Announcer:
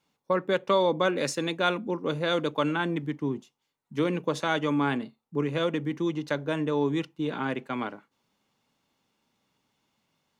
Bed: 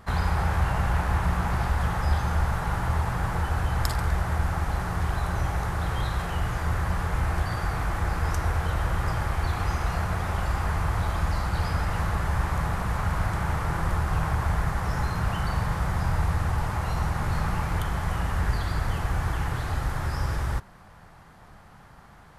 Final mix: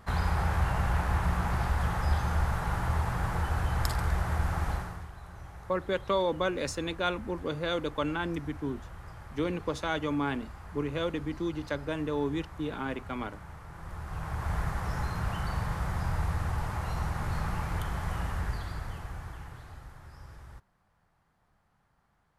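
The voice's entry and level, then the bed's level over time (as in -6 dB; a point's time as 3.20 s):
5.40 s, -4.5 dB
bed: 4.72 s -3.5 dB
5.11 s -19 dB
13.70 s -19 dB
14.56 s -5.5 dB
18.24 s -5.5 dB
20.01 s -21 dB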